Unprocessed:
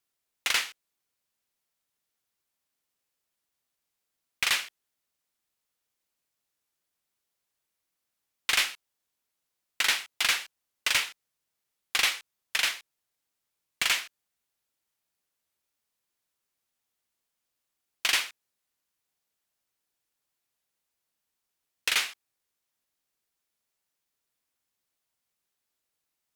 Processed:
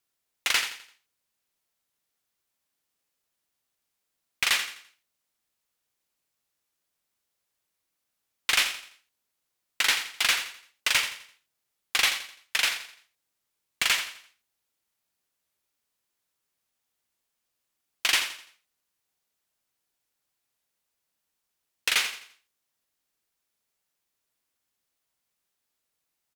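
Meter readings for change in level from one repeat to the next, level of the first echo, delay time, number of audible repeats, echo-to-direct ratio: −8.5 dB, −11.0 dB, 85 ms, 3, −10.5 dB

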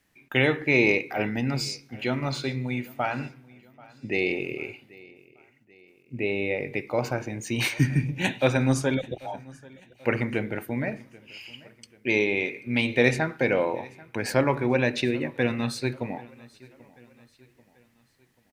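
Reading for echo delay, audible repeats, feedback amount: 787 ms, 2, 47%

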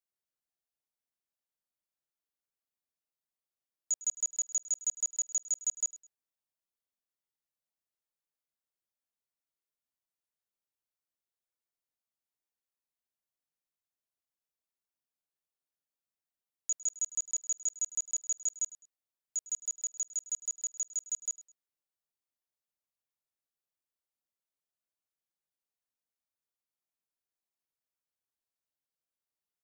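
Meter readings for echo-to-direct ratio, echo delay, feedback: −17.5 dB, 104 ms, 28%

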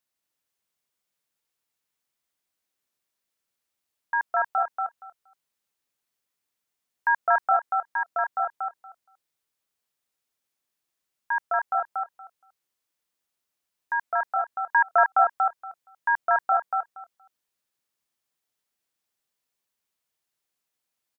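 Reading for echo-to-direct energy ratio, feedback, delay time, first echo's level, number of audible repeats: −3.5 dB, 16%, 235 ms, −3.5 dB, 2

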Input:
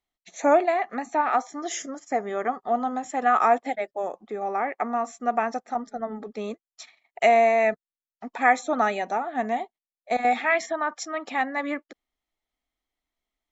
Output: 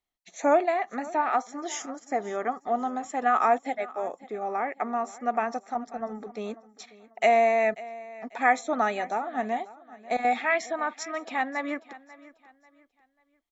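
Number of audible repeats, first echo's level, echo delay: 2, −19.0 dB, 541 ms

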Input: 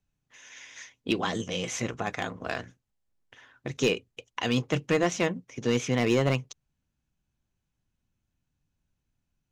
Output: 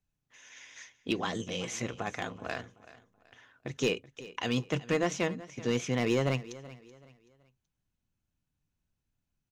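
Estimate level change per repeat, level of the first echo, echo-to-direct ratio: −9.5 dB, −18.0 dB, −17.5 dB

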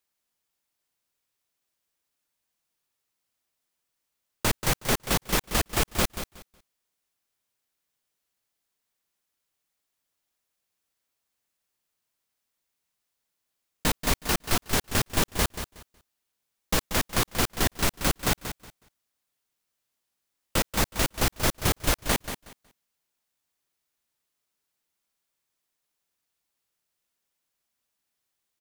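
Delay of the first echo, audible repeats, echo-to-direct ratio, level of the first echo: 184 ms, 2, −10.0 dB, −10.0 dB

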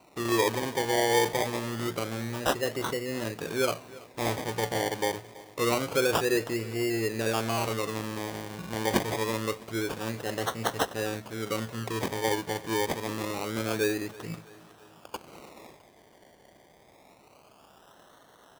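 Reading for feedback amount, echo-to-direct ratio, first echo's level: 57%, −19.5 dB, −21.0 dB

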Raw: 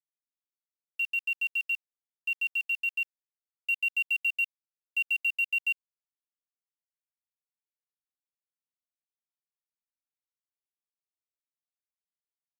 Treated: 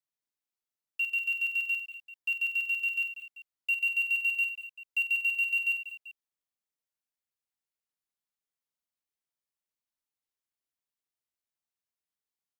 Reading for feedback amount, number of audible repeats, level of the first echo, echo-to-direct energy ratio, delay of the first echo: repeats not evenly spaced, 5, −9.0 dB, −6.5 dB, 45 ms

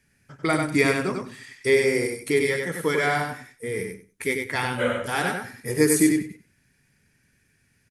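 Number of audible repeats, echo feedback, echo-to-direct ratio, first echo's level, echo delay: 2, 17%, −4.5 dB, −4.5 dB, 95 ms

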